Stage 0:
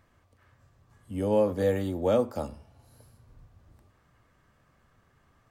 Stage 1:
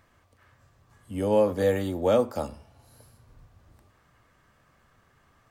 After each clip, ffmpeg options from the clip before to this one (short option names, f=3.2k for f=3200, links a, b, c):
-af "lowshelf=f=490:g=-4.5,volume=4.5dB"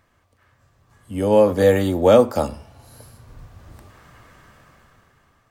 -af "dynaudnorm=f=270:g=9:m=15.5dB"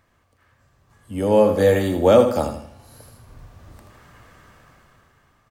-af "aecho=1:1:80|160|240|320:0.376|0.143|0.0543|0.0206,volume=-1dB"